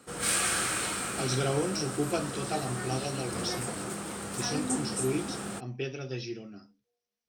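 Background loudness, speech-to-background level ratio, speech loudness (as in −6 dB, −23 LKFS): −32.5 LKFS, −1.5 dB, −34.0 LKFS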